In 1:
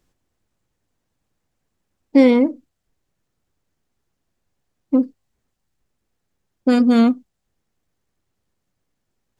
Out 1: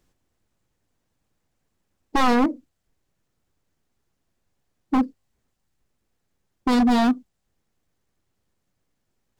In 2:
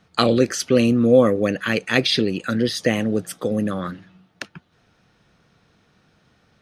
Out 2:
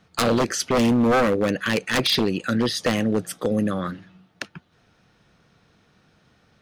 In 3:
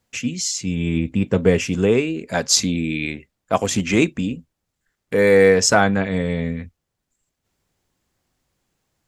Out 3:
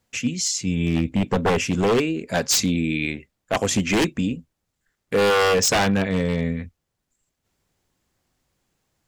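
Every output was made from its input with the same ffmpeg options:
-af "aeval=exprs='0.224*(abs(mod(val(0)/0.224+3,4)-2)-1)':c=same"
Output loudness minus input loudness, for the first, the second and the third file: -5.5, -2.5, -2.5 LU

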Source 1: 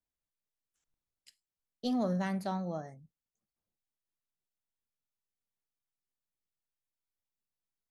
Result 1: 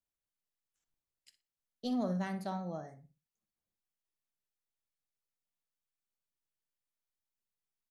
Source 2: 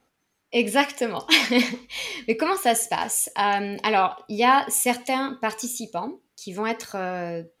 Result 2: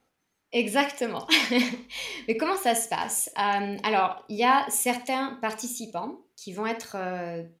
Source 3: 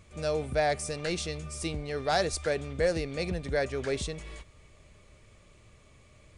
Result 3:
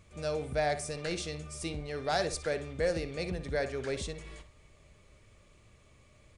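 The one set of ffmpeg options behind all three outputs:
-filter_complex "[0:a]asplit=2[a][b];[b]adelay=60,lowpass=f=3.6k:p=1,volume=-10.5dB,asplit=2[c][d];[d]adelay=60,lowpass=f=3.6k:p=1,volume=0.28,asplit=2[e][f];[f]adelay=60,lowpass=f=3.6k:p=1,volume=0.28[g];[a][c][e][g]amix=inputs=4:normalize=0,volume=-3.5dB"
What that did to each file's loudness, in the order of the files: -3.0, -3.0, -3.5 LU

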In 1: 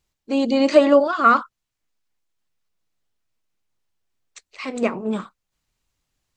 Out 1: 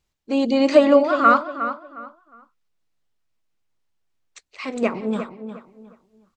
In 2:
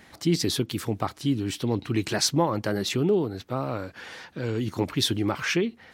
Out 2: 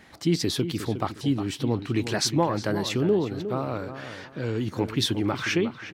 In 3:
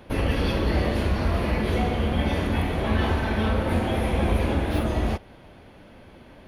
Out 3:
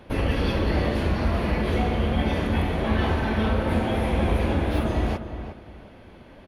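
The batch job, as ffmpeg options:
-filter_complex "[0:a]highshelf=f=7.7k:g=-5.5,asplit=2[a][b];[b]adelay=359,lowpass=f=2.5k:p=1,volume=-10dB,asplit=2[c][d];[d]adelay=359,lowpass=f=2.5k:p=1,volume=0.28,asplit=2[e][f];[f]adelay=359,lowpass=f=2.5k:p=1,volume=0.28[g];[c][e][g]amix=inputs=3:normalize=0[h];[a][h]amix=inputs=2:normalize=0"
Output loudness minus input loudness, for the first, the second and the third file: -0.5, 0.0, +0.5 LU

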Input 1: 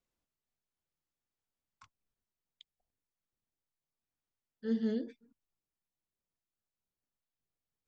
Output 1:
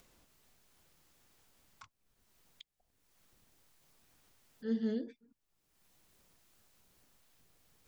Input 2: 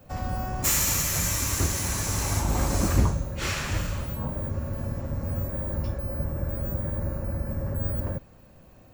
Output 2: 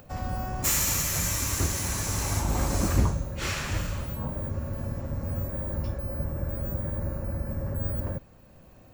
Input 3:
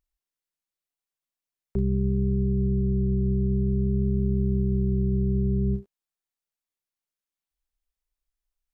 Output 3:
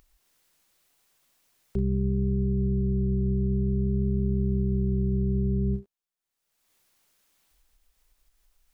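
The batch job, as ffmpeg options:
-af "acompressor=mode=upward:threshold=-46dB:ratio=2.5,volume=-1.5dB"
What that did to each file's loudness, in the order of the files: -1.5, -1.5, -1.5 LU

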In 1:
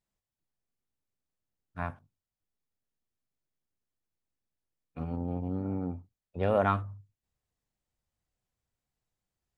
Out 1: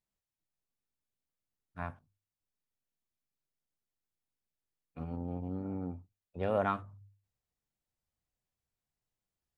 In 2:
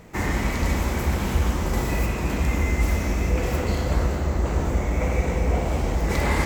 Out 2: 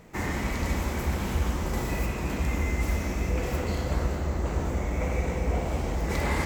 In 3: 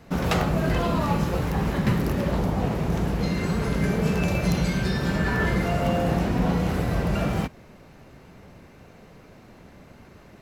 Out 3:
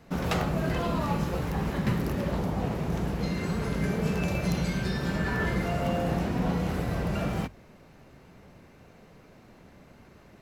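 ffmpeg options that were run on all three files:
-af "bandreject=f=50:t=h:w=6,bandreject=f=100:t=h:w=6,volume=-4.5dB"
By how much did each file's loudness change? -5.0, -5.0, -4.5 LU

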